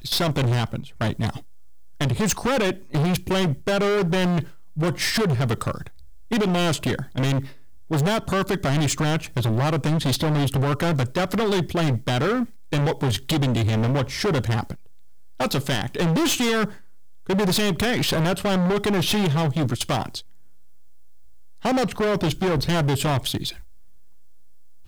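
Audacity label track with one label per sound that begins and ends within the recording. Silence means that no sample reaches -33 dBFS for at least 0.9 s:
21.640000	23.600000	sound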